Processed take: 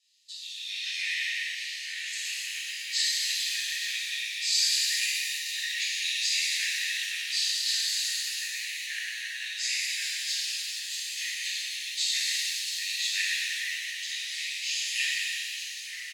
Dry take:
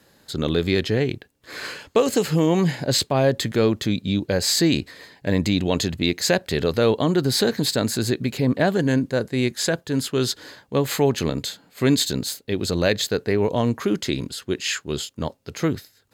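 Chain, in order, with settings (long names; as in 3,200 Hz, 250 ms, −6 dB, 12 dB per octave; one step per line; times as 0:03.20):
low-pass filter 5,100 Hz 12 dB per octave
pitch-shifted copies added −5 semitones −11 dB
Chebyshev high-pass with heavy ripple 1,800 Hz, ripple 3 dB
multiband delay without the direct sound highs, lows 290 ms, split 3,100 Hz
reverb with rising layers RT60 2.7 s, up +7 semitones, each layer −8 dB, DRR −9.5 dB
level −4.5 dB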